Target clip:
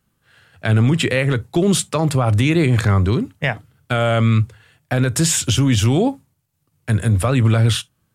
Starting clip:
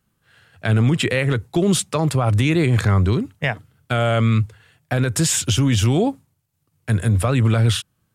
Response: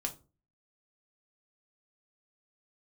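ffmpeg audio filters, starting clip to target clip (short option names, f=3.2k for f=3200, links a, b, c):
-filter_complex "[0:a]asplit=2[a][b];[1:a]atrim=start_sample=2205,atrim=end_sample=3528[c];[b][c]afir=irnorm=-1:irlink=0,volume=-13dB[d];[a][d]amix=inputs=2:normalize=0"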